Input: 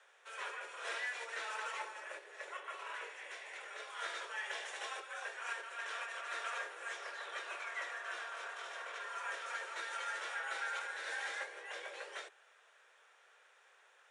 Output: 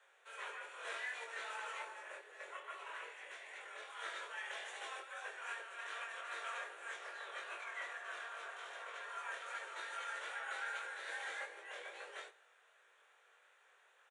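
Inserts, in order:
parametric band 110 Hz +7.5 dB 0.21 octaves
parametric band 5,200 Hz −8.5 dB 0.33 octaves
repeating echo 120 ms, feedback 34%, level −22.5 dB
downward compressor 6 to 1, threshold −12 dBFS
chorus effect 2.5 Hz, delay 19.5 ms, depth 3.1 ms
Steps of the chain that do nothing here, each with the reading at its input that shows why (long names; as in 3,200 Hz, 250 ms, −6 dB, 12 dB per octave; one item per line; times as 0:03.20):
parametric band 110 Hz: nothing at its input below 320 Hz
downward compressor, threshold −12 dBFS: peak of its input −28.0 dBFS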